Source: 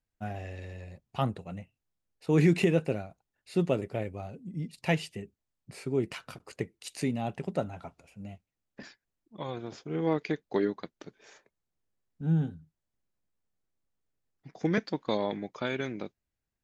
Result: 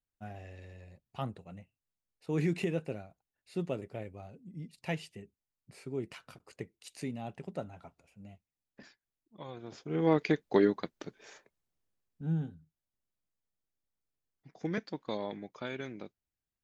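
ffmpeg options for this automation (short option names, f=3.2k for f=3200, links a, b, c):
-af "volume=3dB,afade=t=in:st=9.59:d=0.63:silence=0.281838,afade=t=out:st=10.99:d=1.46:silence=0.316228"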